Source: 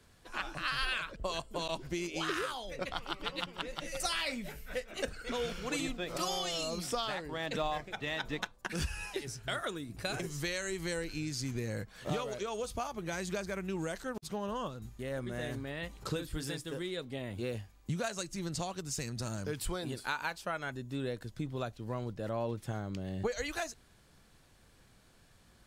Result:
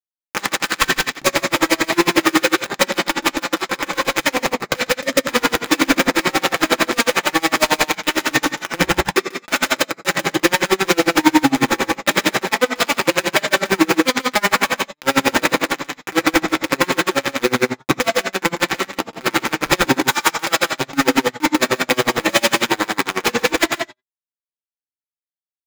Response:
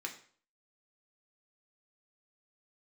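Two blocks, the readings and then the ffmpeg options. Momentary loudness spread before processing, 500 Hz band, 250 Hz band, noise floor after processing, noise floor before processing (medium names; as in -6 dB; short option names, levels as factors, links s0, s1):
5 LU, +17.5 dB, +20.0 dB, under -85 dBFS, -63 dBFS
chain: -filter_complex "[0:a]lowpass=1100,bandreject=f=50:t=h:w=6,bandreject=f=100:t=h:w=6,bandreject=f=150:t=h:w=6,bandreject=f=200:t=h:w=6,aecho=1:1:3.4:0.78,asplit=2[s0][s1];[s1]aeval=exprs='(mod(26.6*val(0)+1,2)-1)/26.6':c=same,volume=0.355[s2];[s0][s2]amix=inputs=2:normalize=0,acrusher=bits=4:mix=0:aa=0.000001,flanger=delay=3.5:depth=5.5:regen=72:speed=0.32:shape=triangular,aecho=1:1:144:0.531[s3];[1:a]atrim=start_sample=2205,afade=t=out:st=0.17:d=0.01,atrim=end_sample=7938[s4];[s3][s4]afir=irnorm=-1:irlink=0,alimiter=level_in=37.6:limit=0.891:release=50:level=0:latency=1,aeval=exprs='val(0)*pow(10,-30*(0.5-0.5*cos(2*PI*11*n/s))/20)':c=same"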